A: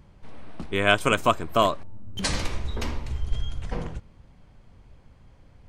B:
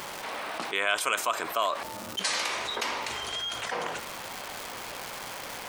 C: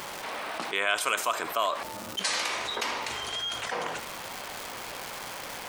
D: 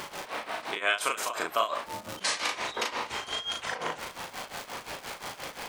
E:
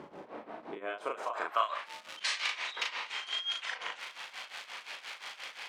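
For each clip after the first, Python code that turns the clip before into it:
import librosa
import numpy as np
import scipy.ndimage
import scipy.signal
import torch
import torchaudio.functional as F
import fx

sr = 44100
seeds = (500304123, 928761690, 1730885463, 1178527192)

y1 = scipy.signal.sosfilt(scipy.signal.butter(2, 740.0, 'highpass', fs=sr, output='sos'), x)
y1 = fx.dmg_crackle(y1, sr, seeds[0], per_s=590.0, level_db=-54.0)
y1 = fx.env_flatten(y1, sr, amount_pct=70)
y1 = y1 * 10.0 ** (-7.0 / 20.0)
y2 = y1 + 10.0 ** (-16.0 / 20.0) * np.pad(y1, (int(76 * sr / 1000.0), 0))[:len(y1)]
y3 = fx.high_shelf(y2, sr, hz=9600.0, db=-6.0)
y3 = y3 * (1.0 - 0.92 / 2.0 + 0.92 / 2.0 * np.cos(2.0 * np.pi * 5.7 * (np.arange(len(y3)) / sr)))
y3 = fx.doubler(y3, sr, ms=37.0, db=-3.0)
y3 = y3 * 10.0 ** (1.5 / 20.0)
y4 = fx.filter_sweep_bandpass(y3, sr, from_hz=280.0, to_hz=2700.0, start_s=0.84, end_s=1.91, q=1.1)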